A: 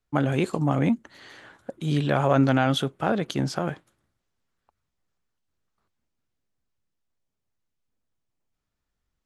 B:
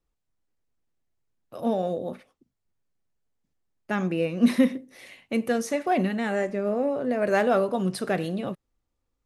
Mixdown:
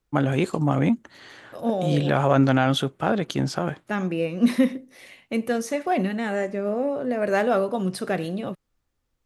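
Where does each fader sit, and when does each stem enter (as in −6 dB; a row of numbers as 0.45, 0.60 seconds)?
+1.5, +0.5 decibels; 0.00, 0.00 seconds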